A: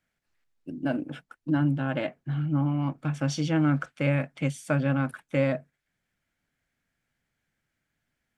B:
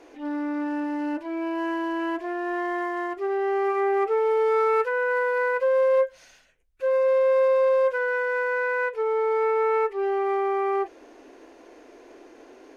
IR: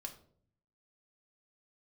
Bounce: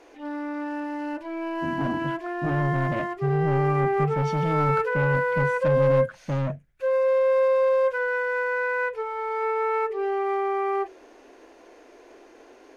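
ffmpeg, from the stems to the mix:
-filter_complex "[0:a]aemphasis=mode=reproduction:type=riaa,asoftclip=type=tanh:threshold=-23dB,adelay=950,volume=0.5dB[link_01];[1:a]bandreject=frequency=62.93:width_type=h:width=4,bandreject=frequency=125.86:width_type=h:width=4,bandreject=frequency=188.79:width_type=h:width=4,bandreject=frequency=251.72:width_type=h:width=4,bandreject=frequency=314.65:width_type=h:width=4,bandreject=frequency=377.58:width_type=h:width=4,bandreject=frequency=440.51:width_type=h:width=4,bandreject=frequency=503.44:width_type=h:width=4,bandreject=frequency=566.37:width_type=h:width=4,bandreject=frequency=629.3:width_type=h:width=4,bandreject=frequency=692.23:width_type=h:width=4,volume=0dB[link_02];[link_01][link_02]amix=inputs=2:normalize=0,equalizer=frequency=280:width_type=o:width=0.71:gain=-4"

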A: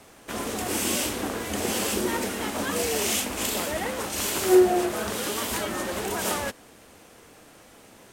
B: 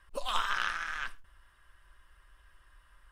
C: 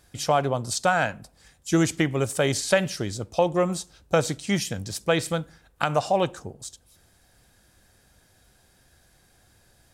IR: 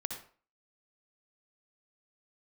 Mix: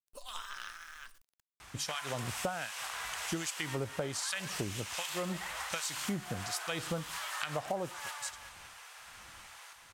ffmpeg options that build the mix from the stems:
-filter_complex "[0:a]highpass=frequency=930:width=0.5412,highpass=frequency=930:width=1.3066,highshelf=frequency=10000:gain=-11.5,acompressor=threshold=-43dB:ratio=3,adelay=1600,volume=2.5dB,asplit=2[link_01][link_02];[link_02]volume=-4dB[link_03];[1:a]aeval=exprs='val(0)*gte(abs(val(0)),0.00335)':channel_layout=same,bass=frequency=250:gain=-1,treble=frequency=4000:gain=11,volume=-13.5dB[link_04];[2:a]acrossover=split=1600[link_05][link_06];[link_05]aeval=exprs='val(0)*(1-1/2+1/2*cos(2*PI*1.3*n/s))':channel_layout=same[link_07];[link_06]aeval=exprs='val(0)*(1-1/2-1/2*cos(2*PI*1.3*n/s))':channel_layout=same[link_08];[link_07][link_08]amix=inputs=2:normalize=0,adelay=1600,volume=0.5dB[link_09];[link_03]aecho=0:1:194|388|582|776|970:1|0.37|0.137|0.0507|0.0187[link_10];[link_01][link_04][link_09][link_10]amix=inputs=4:normalize=0,acompressor=threshold=-33dB:ratio=6"

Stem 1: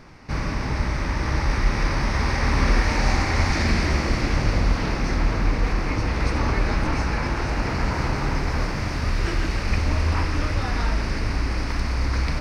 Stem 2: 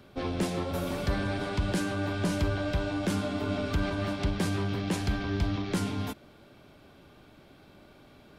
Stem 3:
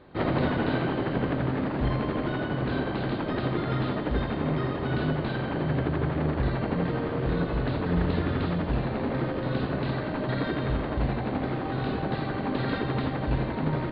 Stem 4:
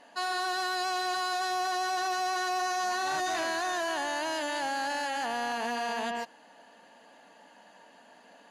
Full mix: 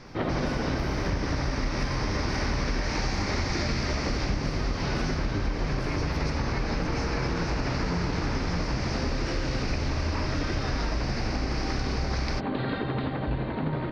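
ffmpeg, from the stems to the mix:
ffmpeg -i stem1.wav -i stem2.wav -i stem3.wav -i stem4.wav -filter_complex "[0:a]lowpass=frequency=5500:width_type=q:width=2.1,volume=-2.5dB[link_01];[1:a]acrossover=split=4200[link_02][link_03];[link_03]acompressor=threshold=-54dB:ratio=4:attack=1:release=60[link_04];[link_02][link_04]amix=inputs=2:normalize=0,aphaser=in_gain=1:out_gain=1:delay=2.2:decay=0.78:speed=0.94:type=triangular,adelay=50,volume=-8dB[link_05];[2:a]volume=0dB[link_06];[3:a]acompressor=threshold=-39dB:ratio=6,adelay=1200,volume=-12dB[link_07];[link_01][link_05][link_06][link_07]amix=inputs=4:normalize=0,acompressor=threshold=-24dB:ratio=6" out.wav

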